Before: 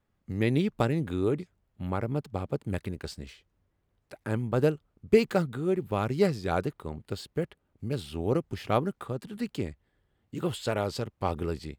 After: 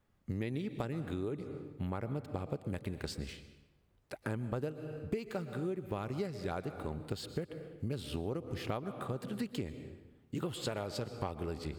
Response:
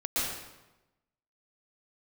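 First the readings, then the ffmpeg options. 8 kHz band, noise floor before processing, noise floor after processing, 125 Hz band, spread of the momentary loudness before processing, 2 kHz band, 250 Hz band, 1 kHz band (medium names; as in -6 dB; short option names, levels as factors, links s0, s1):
-4.0 dB, -76 dBFS, -70 dBFS, -7.5 dB, 13 LU, -9.0 dB, -8.5 dB, -9.5 dB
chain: -filter_complex "[0:a]asplit=2[s0][s1];[1:a]atrim=start_sample=2205[s2];[s1][s2]afir=irnorm=-1:irlink=0,volume=0.0891[s3];[s0][s3]amix=inputs=2:normalize=0,acompressor=threshold=0.02:ratio=16,volume=1.12"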